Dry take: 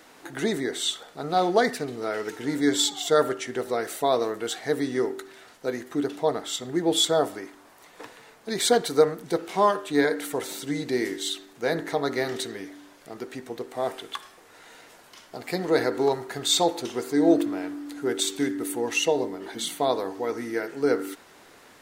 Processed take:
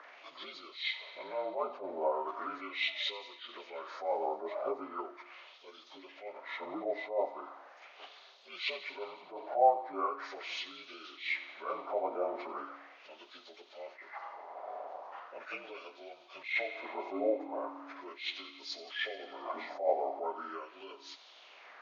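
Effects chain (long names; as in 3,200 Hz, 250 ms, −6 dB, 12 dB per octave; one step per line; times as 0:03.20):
partials spread apart or drawn together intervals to 80%
high-pass filter 160 Hz 24 dB per octave
parametric band 620 Hz +12.5 dB 1.4 octaves
downward compressor 2.5 to 1, threshold −31 dBFS, peak gain reduction 16.5 dB
LFO wah 0.39 Hz 710–3,800 Hz, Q 3
delay with a high-pass on its return 89 ms, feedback 73%, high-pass 1,600 Hz, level −16 dB
level that may rise only so fast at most 150 dB per second
level +5.5 dB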